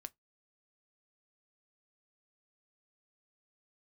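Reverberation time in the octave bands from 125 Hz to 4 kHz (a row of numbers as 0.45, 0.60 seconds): 0.20, 0.15, 0.15, 0.15, 0.15, 0.10 seconds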